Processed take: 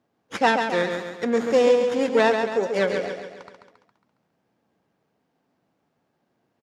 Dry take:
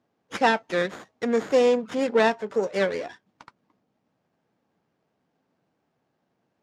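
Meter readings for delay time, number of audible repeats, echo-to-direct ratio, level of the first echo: 137 ms, 5, −5.0 dB, −6.0 dB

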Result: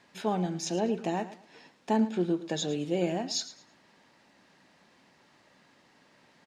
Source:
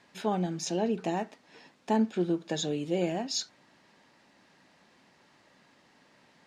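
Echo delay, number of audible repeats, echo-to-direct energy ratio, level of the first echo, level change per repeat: 109 ms, 2, −14.5 dB, −15.0 dB, −11.5 dB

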